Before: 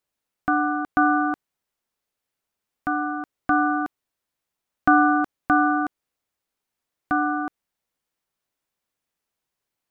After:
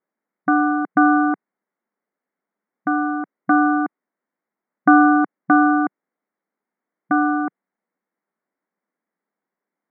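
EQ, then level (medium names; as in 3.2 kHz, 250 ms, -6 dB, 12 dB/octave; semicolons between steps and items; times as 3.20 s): brick-wall FIR high-pass 170 Hz; steep low-pass 2.2 kHz 96 dB/octave; bass shelf 320 Hz +8.5 dB; +2.0 dB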